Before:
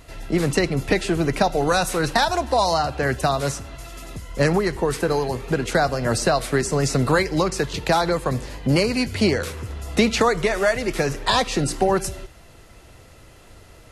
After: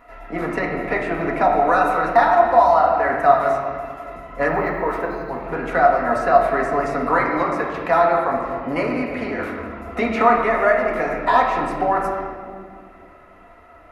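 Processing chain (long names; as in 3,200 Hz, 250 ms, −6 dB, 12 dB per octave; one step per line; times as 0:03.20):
notch filter 1,600 Hz, Q 27
0:05.06–0:05.30: time-frequency box erased 220–3,600 Hz
graphic EQ with 10 bands 125 Hz −7 dB, 250 Hz +4 dB, 500 Hz +3 dB, 1,000 Hz +11 dB, 2,000 Hz +11 dB, 4,000 Hz −9 dB, 8,000 Hz −9 dB
0:08.90–0:09.39: downward compressor 2 to 1, threshold −18 dBFS, peak gain reduction 4.5 dB
hollow resonant body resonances 680/1,300/3,800 Hz, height 10 dB, ringing for 35 ms
convolution reverb RT60 2.1 s, pre-delay 4 ms, DRR −2 dB
0:04.49–0:05.44: linearly interpolated sample-rate reduction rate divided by 2×
level −12 dB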